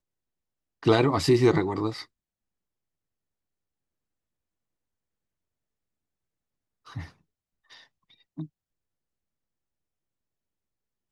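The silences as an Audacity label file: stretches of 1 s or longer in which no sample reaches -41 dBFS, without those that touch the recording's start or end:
2.030000	6.880000	silence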